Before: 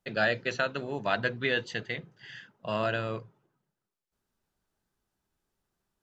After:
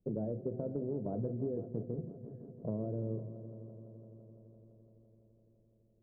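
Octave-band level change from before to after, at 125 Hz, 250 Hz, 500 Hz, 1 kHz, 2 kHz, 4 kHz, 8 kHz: +1.0 dB, +0.5 dB, -6.5 dB, -20.0 dB, under -40 dB, under -40 dB, no reading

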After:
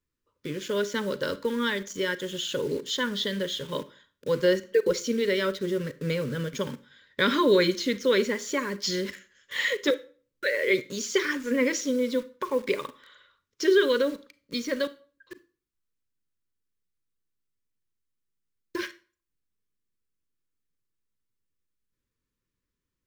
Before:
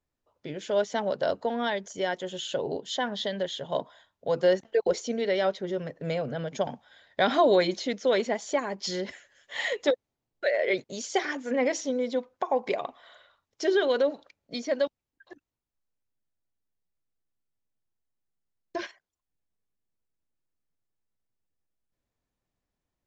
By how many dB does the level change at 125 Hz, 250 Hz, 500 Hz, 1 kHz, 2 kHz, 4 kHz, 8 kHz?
+4.0 dB, +4.0 dB, 0.0 dB, -4.0 dB, +4.0 dB, +4.0 dB, no reading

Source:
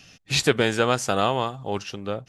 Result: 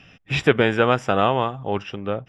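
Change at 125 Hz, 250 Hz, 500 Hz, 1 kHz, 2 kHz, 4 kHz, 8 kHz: +3.5 dB, +3.5 dB, +3.5 dB, +3.5 dB, +3.0 dB, -3.0 dB, under -10 dB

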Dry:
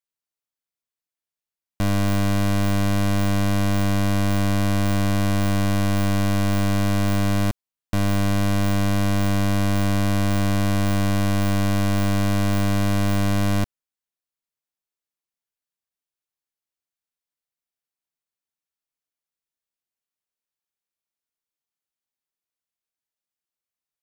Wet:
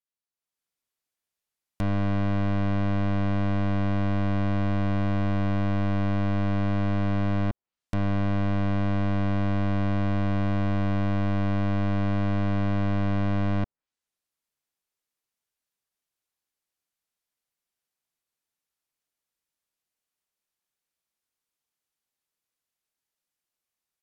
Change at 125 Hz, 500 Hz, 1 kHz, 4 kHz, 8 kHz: -4.0 dB, -4.5 dB, -5.0 dB, -13.0 dB, under -25 dB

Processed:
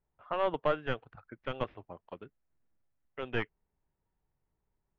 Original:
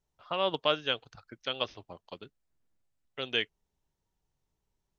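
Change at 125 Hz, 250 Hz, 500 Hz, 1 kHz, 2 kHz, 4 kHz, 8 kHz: +5.0 dB, +1.0 dB, -0.5 dB, -0.5 dB, -3.5 dB, -16.0 dB, no reading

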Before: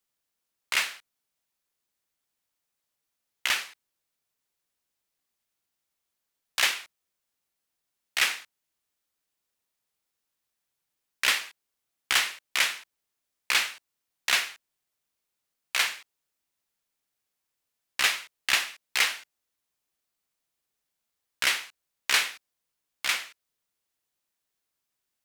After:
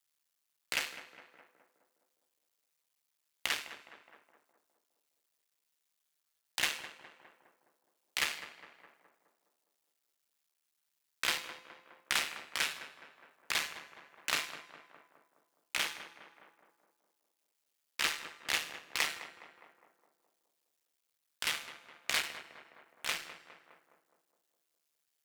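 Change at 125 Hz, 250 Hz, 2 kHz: no reading, -0.5 dB, -9.0 dB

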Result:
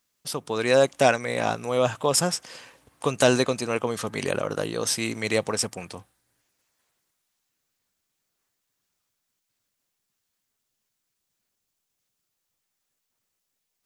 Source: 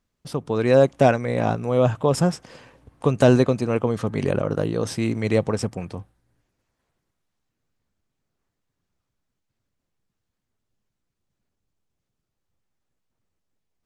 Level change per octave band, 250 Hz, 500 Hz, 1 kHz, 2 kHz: -7.0 dB, -3.5 dB, -1.0 dB, +3.0 dB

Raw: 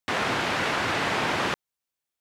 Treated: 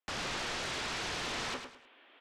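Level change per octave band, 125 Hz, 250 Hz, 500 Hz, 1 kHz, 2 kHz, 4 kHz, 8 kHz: -12.0 dB, -13.0 dB, -12.5 dB, -13.0 dB, -11.5 dB, -6.5 dB, -3.5 dB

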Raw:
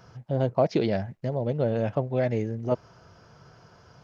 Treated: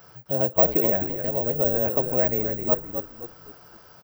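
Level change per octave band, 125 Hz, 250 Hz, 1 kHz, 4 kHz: -5.5 dB, -1.5 dB, +2.0 dB, no reading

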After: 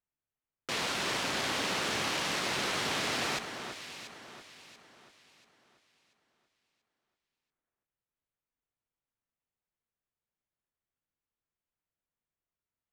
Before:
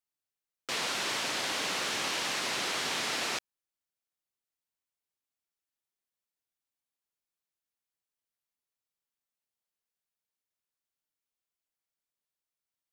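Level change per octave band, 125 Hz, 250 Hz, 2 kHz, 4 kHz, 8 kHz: +7.5 dB, +4.5 dB, +0.5 dB, -1.0 dB, -2.0 dB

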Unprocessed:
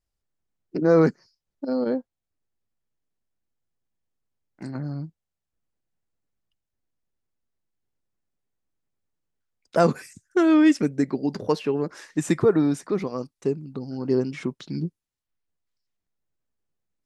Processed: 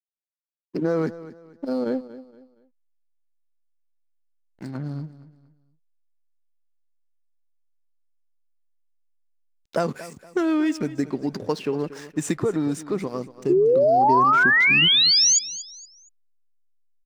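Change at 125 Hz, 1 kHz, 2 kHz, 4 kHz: -2.5 dB, +10.0 dB, +14.0 dB, +22.0 dB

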